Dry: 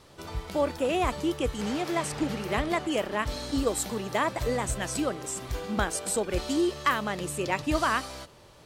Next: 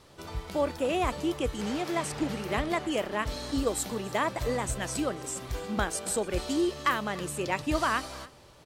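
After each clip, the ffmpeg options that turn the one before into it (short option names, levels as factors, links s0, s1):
-af "aecho=1:1:291:0.0891,volume=0.841"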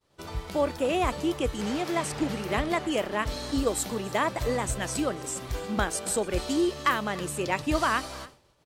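-af "agate=range=0.0224:threshold=0.00562:ratio=3:detection=peak,volume=1.26"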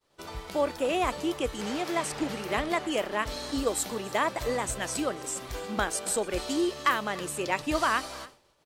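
-af "equalizer=f=89:w=0.49:g=-8.5"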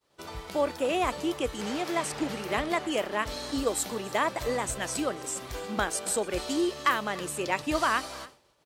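-af "highpass=43"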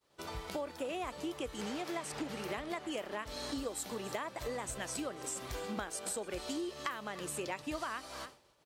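-af "acompressor=threshold=0.02:ratio=6,volume=0.794"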